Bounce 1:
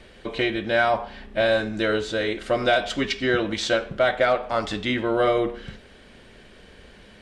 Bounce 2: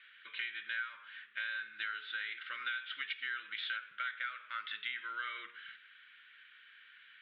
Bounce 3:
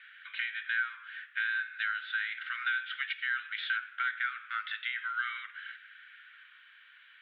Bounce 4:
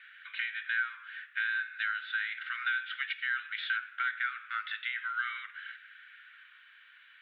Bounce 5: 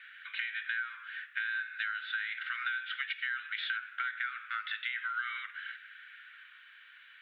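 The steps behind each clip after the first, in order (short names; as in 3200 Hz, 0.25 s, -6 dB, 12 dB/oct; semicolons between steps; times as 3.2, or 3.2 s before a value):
elliptic band-pass 1400–3600 Hz, stop band 40 dB; high shelf 2200 Hz -10.5 dB; compressor 6:1, threshold -37 dBFS, peak gain reduction 13.5 dB; gain +1 dB
high-pass sweep 1500 Hz -> 750 Hz, 6.19–6.75
notch 3200 Hz, Q 25
compressor, threshold -33 dBFS, peak gain reduction 7 dB; bell 910 Hz -2 dB; gain +2 dB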